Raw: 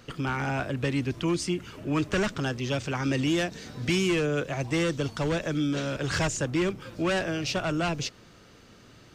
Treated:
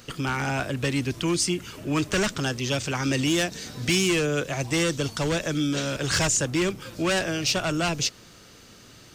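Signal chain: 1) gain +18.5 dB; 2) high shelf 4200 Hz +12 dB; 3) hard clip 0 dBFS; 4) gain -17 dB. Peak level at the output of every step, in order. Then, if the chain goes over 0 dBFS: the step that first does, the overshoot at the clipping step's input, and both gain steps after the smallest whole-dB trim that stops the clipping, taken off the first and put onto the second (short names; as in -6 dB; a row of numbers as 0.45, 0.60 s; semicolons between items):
+3.0, +3.5, 0.0, -17.0 dBFS; step 1, 3.5 dB; step 1 +14.5 dB, step 4 -13 dB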